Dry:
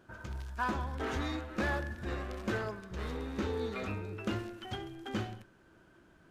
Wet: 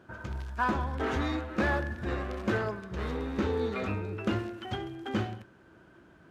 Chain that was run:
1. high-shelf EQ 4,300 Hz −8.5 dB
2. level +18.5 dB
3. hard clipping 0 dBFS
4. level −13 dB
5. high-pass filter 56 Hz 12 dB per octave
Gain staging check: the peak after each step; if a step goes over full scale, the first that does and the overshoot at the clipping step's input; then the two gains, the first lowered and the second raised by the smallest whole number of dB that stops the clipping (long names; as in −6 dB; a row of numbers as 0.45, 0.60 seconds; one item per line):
−22.0, −3.5, −3.5, −16.5, −16.0 dBFS
no step passes full scale